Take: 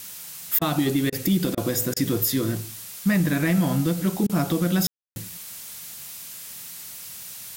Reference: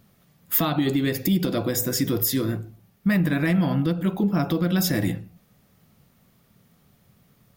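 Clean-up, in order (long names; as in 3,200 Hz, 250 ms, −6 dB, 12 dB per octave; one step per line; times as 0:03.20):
ambience match 0:04.87–0:05.16
repair the gap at 0:00.59/0:01.10/0:01.55/0:01.94/0:04.27/0:04.93, 23 ms
noise reduction from a noise print 22 dB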